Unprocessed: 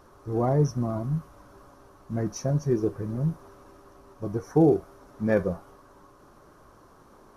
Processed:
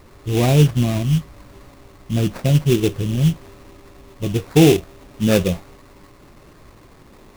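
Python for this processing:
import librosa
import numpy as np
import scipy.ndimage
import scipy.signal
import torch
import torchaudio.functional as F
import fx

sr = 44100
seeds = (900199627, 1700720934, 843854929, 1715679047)

y = fx.low_shelf(x, sr, hz=290.0, db=9.0)
y = fx.sample_hold(y, sr, seeds[0], rate_hz=3100.0, jitter_pct=20)
y = y * librosa.db_to_amplitude(3.5)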